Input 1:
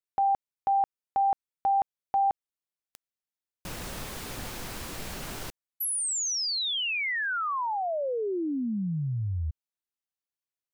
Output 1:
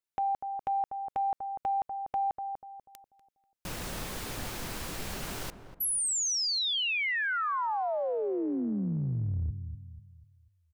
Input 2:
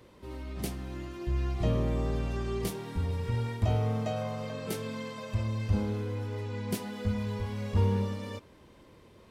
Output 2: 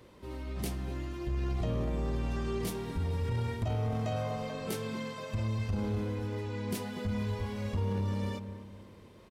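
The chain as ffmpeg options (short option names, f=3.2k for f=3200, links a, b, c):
-filter_complex "[0:a]asplit=2[a][b];[b]adelay=244,lowpass=f=980:p=1,volume=-9.5dB,asplit=2[c][d];[d]adelay=244,lowpass=f=980:p=1,volume=0.42,asplit=2[e][f];[f]adelay=244,lowpass=f=980:p=1,volume=0.42,asplit=2[g][h];[h]adelay=244,lowpass=f=980:p=1,volume=0.42,asplit=2[i][j];[j]adelay=244,lowpass=f=980:p=1,volume=0.42[k];[c][e][g][i][k]amix=inputs=5:normalize=0[l];[a][l]amix=inputs=2:normalize=0,acompressor=threshold=-27dB:ratio=6:attack=0.79:release=63:knee=1:detection=peak"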